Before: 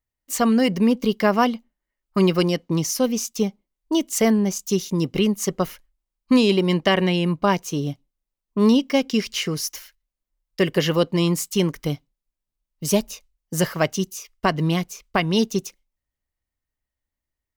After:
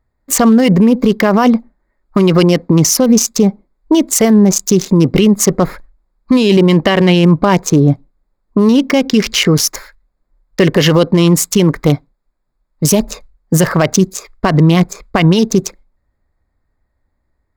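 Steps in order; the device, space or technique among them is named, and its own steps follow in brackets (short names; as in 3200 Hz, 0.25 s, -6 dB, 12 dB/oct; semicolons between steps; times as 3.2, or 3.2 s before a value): Wiener smoothing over 15 samples; 11.73–12.85 low shelf 410 Hz -5.5 dB; loud club master (compressor 2:1, threshold -20 dBFS, peak gain reduction 5 dB; hard clip -11 dBFS, distortion -40 dB; maximiser +22 dB); gain -1 dB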